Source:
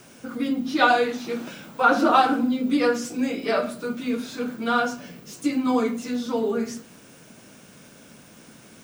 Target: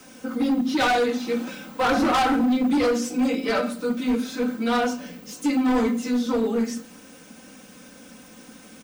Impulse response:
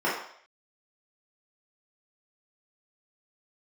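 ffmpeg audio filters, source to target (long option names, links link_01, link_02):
-filter_complex "[0:a]aecho=1:1:3.9:0.8,acrossover=split=120|6300[link_01][link_02][link_03];[link_02]asoftclip=type=hard:threshold=-18dB[link_04];[link_01][link_04][link_03]amix=inputs=3:normalize=0"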